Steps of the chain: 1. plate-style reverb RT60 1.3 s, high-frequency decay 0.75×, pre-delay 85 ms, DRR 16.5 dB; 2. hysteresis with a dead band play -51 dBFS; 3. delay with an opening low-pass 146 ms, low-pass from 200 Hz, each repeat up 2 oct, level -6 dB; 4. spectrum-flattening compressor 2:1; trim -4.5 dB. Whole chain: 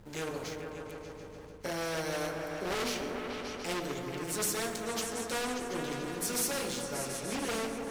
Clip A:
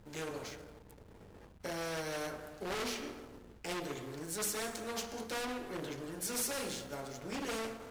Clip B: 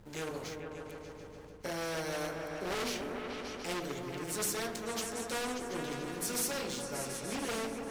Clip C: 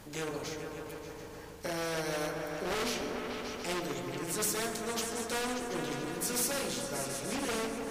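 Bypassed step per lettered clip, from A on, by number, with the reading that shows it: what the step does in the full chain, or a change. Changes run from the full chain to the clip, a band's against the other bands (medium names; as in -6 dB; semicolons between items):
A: 3, loudness change -4.5 LU; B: 1, loudness change -2.0 LU; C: 2, distortion -29 dB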